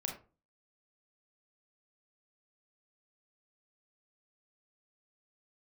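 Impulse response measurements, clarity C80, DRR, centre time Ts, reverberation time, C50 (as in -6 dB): 13.0 dB, 1.0 dB, 24 ms, 0.35 s, 7.0 dB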